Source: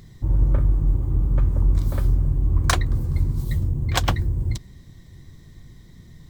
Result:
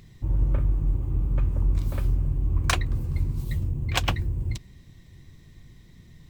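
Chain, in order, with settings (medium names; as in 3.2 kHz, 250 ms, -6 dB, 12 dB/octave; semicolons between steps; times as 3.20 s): peaking EQ 2.6 kHz +9.5 dB 0.43 oct; trim -4.5 dB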